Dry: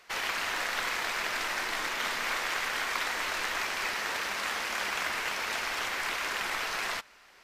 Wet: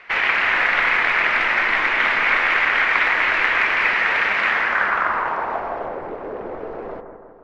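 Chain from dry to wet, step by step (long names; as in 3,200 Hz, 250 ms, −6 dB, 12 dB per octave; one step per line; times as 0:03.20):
low-pass filter sweep 2,200 Hz → 480 Hz, 0:04.46–0:06.09
bucket-brigade delay 164 ms, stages 2,048, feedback 59%, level −8 dB
level +9 dB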